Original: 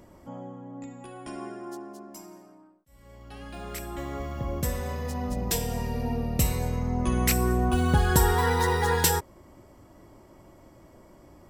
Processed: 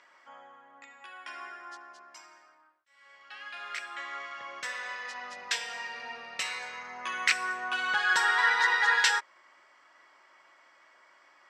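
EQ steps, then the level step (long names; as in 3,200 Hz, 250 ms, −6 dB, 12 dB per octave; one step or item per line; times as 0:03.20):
high-pass with resonance 1,600 Hz, resonance Q 1.8
low-pass filter 5,800 Hz 12 dB per octave
high-frequency loss of the air 65 metres
+4.0 dB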